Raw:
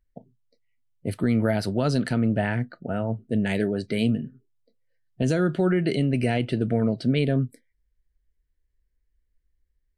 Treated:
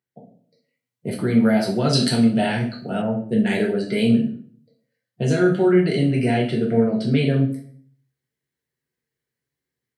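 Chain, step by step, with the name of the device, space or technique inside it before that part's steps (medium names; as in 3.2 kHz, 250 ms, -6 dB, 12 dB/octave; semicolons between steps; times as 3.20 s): far laptop microphone (reverberation RT60 0.50 s, pre-delay 3 ms, DRR -2.5 dB; high-pass 140 Hz 24 dB/octave; level rider gain up to 5.5 dB); 1.93–3.02 s: resonant high shelf 2.6 kHz +10 dB, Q 1.5; trim -4 dB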